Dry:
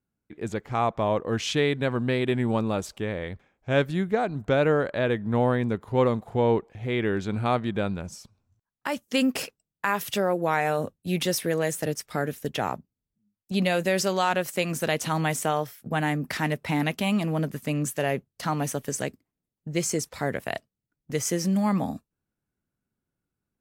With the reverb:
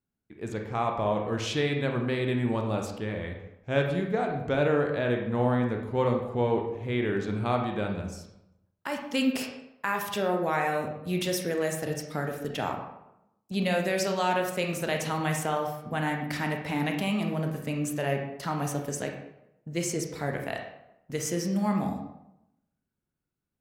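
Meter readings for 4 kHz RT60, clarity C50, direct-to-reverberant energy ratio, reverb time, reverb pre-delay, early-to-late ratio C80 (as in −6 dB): 0.55 s, 5.0 dB, 2.5 dB, 0.85 s, 27 ms, 8.0 dB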